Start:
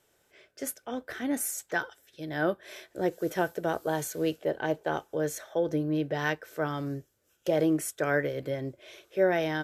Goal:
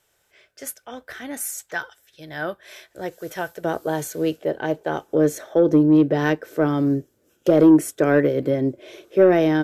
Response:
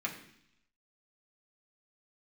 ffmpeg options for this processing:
-af "asetnsamples=n=441:p=0,asendcmd='3.64 equalizer g 3.5;5.08 equalizer g 12.5',equalizer=f=280:t=o:w=2.1:g=-8,acontrast=68,volume=-3dB"

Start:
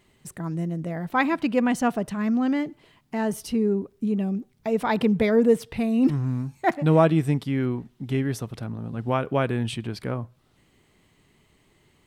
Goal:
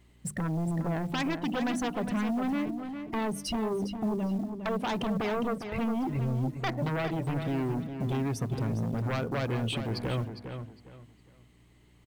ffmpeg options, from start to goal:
-filter_complex "[0:a]afftdn=nr=14:nf=-37,bandreject=f=50:t=h:w=6,bandreject=f=100:t=h:w=6,bandreject=f=150:t=h:w=6,bandreject=f=200:t=h:w=6,bandreject=f=250:t=h:w=6,bandreject=f=300:t=h:w=6,acompressor=threshold=-34dB:ratio=5,aeval=exprs='0.0562*sin(PI/2*2.51*val(0)/0.0562)':c=same,aeval=exprs='val(0)+0.00141*(sin(2*PI*60*n/s)+sin(2*PI*2*60*n/s)/2+sin(2*PI*3*60*n/s)/3+sin(2*PI*4*60*n/s)/4+sin(2*PI*5*60*n/s)/5)':c=same,acrusher=bits=8:mode=log:mix=0:aa=0.000001,asplit=2[a][b];[b]adelay=407,lowpass=f=4.7k:p=1,volume=-8dB,asplit=2[c][d];[d]adelay=407,lowpass=f=4.7k:p=1,volume=0.28,asplit=2[e][f];[f]adelay=407,lowpass=f=4.7k:p=1,volume=0.28[g];[a][c][e][g]amix=inputs=4:normalize=0,volume=-2dB"

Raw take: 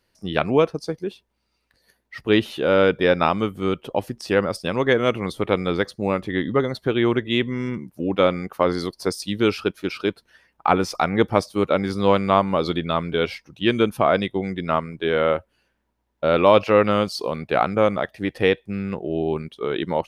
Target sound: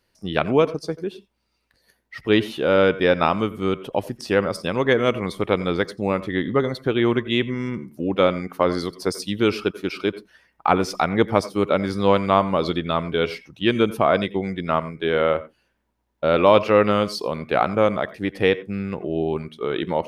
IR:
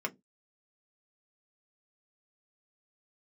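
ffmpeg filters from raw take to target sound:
-filter_complex "[0:a]asplit=2[a][b];[1:a]atrim=start_sample=2205,atrim=end_sample=3528,adelay=87[c];[b][c]afir=irnorm=-1:irlink=0,volume=-21dB[d];[a][d]amix=inputs=2:normalize=0"

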